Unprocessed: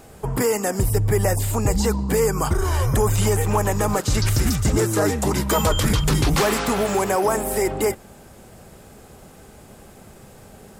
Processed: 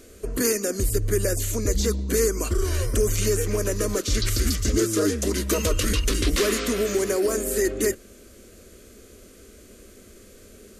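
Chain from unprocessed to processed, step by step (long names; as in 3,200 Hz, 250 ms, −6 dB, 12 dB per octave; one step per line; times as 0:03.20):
formants moved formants −2 semitones
phaser with its sweep stopped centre 350 Hz, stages 4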